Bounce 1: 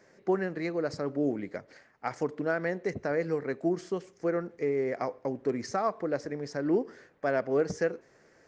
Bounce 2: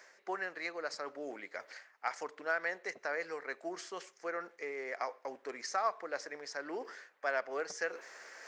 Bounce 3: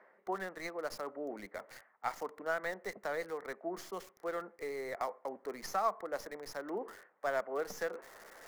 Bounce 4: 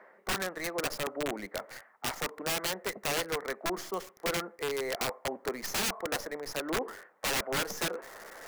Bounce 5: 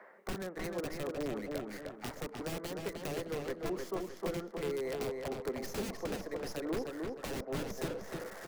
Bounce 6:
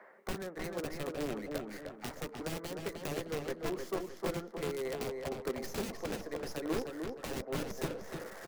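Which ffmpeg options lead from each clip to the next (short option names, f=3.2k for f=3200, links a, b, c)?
-af "highpass=960,areverse,acompressor=mode=upward:threshold=-40dB:ratio=2.5,areverse,volume=1dB"
-filter_complex "[0:a]equalizer=f=200:t=o:w=0.33:g=11,equalizer=f=1.6k:t=o:w=0.33:g=-6,equalizer=f=2.5k:t=o:w=0.33:g=-6,acrossover=split=200|2000[a][b][c];[c]acrusher=bits=6:dc=4:mix=0:aa=0.000001[d];[a][b][d]amix=inputs=3:normalize=0,volume=1.5dB"
-af "aeval=exprs='(mod(39.8*val(0)+1,2)-1)/39.8':c=same,volume=7dB"
-filter_complex "[0:a]acrossover=split=500[a][b];[b]acompressor=threshold=-45dB:ratio=5[c];[a][c]amix=inputs=2:normalize=0,asplit=2[d][e];[e]adelay=307,lowpass=f=4.5k:p=1,volume=-3.5dB,asplit=2[f][g];[g]adelay=307,lowpass=f=4.5k:p=1,volume=0.37,asplit=2[h][i];[i]adelay=307,lowpass=f=4.5k:p=1,volume=0.37,asplit=2[j][k];[k]adelay=307,lowpass=f=4.5k:p=1,volume=0.37,asplit=2[l][m];[m]adelay=307,lowpass=f=4.5k:p=1,volume=0.37[n];[d][f][h][j][l][n]amix=inputs=6:normalize=0"
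-filter_complex "[0:a]asplit=2[a][b];[b]adelay=13,volume=-13dB[c];[a][c]amix=inputs=2:normalize=0,asplit=2[d][e];[e]acrusher=bits=4:mix=0:aa=0.000001,volume=-10dB[f];[d][f]amix=inputs=2:normalize=0,volume=-1dB"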